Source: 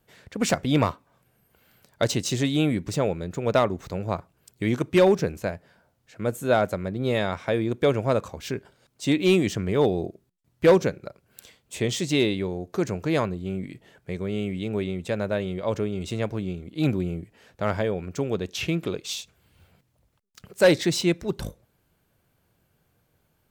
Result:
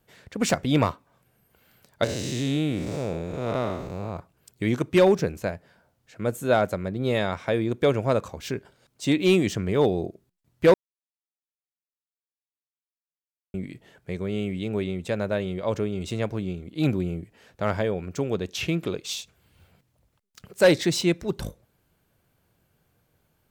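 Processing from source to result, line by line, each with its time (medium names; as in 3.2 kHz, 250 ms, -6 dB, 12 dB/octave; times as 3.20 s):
2.04–4.17 s: spectral blur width 255 ms
10.74–13.54 s: mute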